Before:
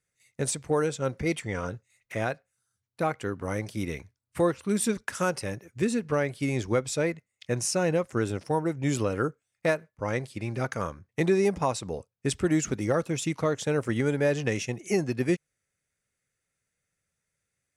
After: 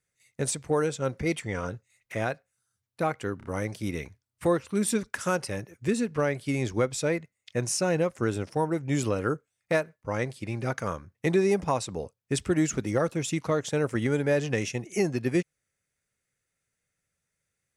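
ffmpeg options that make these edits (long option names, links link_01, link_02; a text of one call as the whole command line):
ffmpeg -i in.wav -filter_complex "[0:a]asplit=3[link_01][link_02][link_03];[link_01]atrim=end=3.412[link_04];[link_02]atrim=start=3.378:end=3.412[link_05];[link_03]atrim=start=3.378[link_06];[link_04][link_05]acrossfade=duration=0.004:curve1=hsin:curve2=hsin[link_07];[link_07][link_06]acrossfade=duration=0.004:curve1=hsin:curve2=hsin" out.wav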